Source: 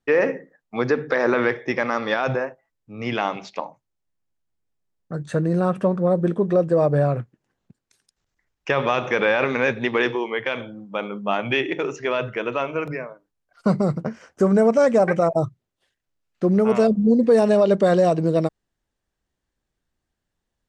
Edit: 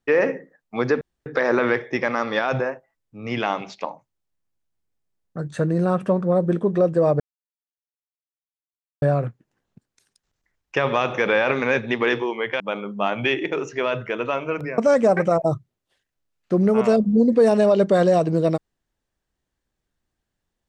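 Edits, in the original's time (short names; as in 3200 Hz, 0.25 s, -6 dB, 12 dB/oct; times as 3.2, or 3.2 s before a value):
1.01 insert room tone 0.25 s
6.95 insert silence 1.82 s
10.53–10.87 cut
13.05–14.69 cut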